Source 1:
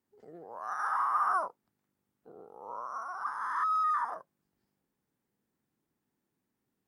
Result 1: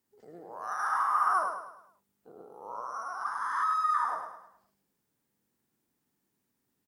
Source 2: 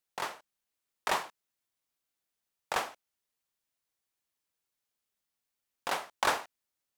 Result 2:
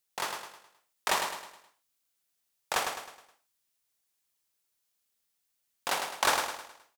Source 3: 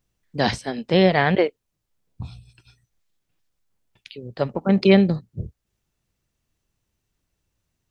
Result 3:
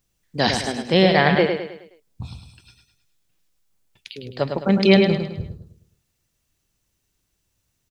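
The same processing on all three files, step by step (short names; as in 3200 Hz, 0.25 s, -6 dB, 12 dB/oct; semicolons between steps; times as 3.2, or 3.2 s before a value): high shelf 3200 Hz +7.5 dB; feedback echo 0.105 s, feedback 42%, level -6 dB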